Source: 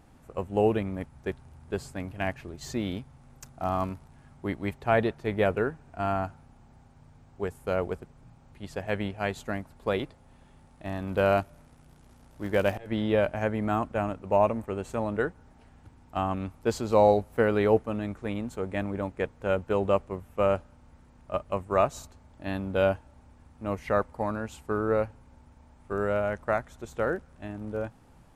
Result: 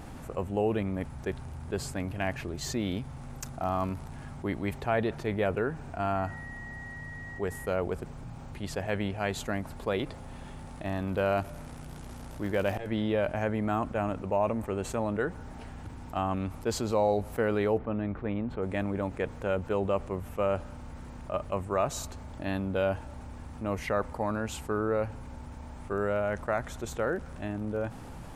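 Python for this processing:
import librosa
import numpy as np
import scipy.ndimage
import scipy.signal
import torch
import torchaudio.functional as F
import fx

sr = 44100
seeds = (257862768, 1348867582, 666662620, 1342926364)

y = fx.dmg_tone(x, sr, hz=1900.0, level_db=-53.0, at=(6.14, 7.71), fade=0.02)
y = fx.air_absorb(y, sr, metres=420.0, at=(17.77, 18.61), fade=0.02)
y = fx.env_flatten(y, sr, amount_pct=50)
y = y * librosa.db_to_amplitude(-6.5)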